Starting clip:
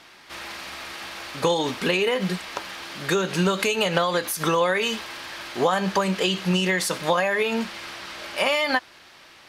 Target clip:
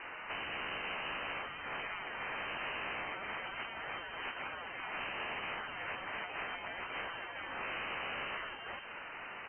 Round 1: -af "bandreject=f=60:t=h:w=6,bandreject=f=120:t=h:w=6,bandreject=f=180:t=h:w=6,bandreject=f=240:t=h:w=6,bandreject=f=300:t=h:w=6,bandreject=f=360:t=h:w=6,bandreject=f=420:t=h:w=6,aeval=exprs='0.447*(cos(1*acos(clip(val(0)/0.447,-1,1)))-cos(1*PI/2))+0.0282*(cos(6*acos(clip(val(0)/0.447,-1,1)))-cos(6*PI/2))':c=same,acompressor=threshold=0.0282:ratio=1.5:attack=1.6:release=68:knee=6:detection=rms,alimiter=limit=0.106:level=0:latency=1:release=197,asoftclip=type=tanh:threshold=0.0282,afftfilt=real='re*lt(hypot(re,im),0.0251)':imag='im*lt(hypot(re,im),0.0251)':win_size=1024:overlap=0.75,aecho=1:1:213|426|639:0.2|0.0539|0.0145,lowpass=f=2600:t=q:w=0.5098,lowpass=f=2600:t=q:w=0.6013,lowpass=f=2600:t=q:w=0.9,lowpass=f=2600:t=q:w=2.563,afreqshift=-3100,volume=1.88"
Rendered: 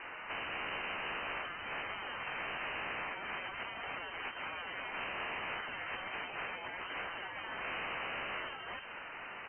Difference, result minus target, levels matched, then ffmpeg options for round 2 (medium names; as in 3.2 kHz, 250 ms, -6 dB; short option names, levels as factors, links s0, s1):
saturation: distortion +7 dB
-af "bandreject=f=60:t=h:w=6,bandreject=f=120:t=h:w=6,bandreject=f=180:t=h:w=6,bandreject=f=240:t=h:w=6,bandreject=f=300:t=h:w=6,bandreject=f=360:t=h:w=6,bandreject=f=420:t=h:w=6,aeval=exprs='0.447*(cos(1*acos(clip(val(0)/0.447,-1,1)))-cos(1*PI/2))+0.0282*(cos(6*acos(clip(val(0)/0.447,-1,1)))-cos(6*PI/2))':c=same,acompressor=threshold=0.0282:ratio=1.5:attack=1.6:release=68:knee=6:detection=rms,alimiter=limit=0.106:level=0:latency=1:release=197,asoftclip=type=tanh:threshold=0.0596,afftfilt=real='re*lt(hypot(re,im),0.0251)':imag='im*lt(hypot(re,im),0.0251)':win_size=1024:overlap=0.75,aecho=1:1:213|426|639:0.2|0.0539|0.0145,lowpass=f=2600:t=q:w=0.5098,lowpass=f=2600:t=q:w=0.6013,lowpass=f=2600:t=q:w=0.9,lowpass=f=2600:t=q:w=2.563,afreqshift=-3100,volume=1.88"